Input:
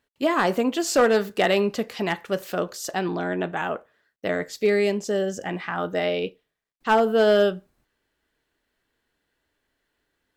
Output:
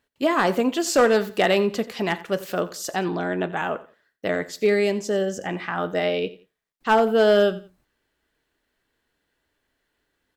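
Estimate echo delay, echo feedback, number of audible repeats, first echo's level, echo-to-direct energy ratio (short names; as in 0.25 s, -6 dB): 87 ms, 26%, 2, -17.5 dB, -17.0 dB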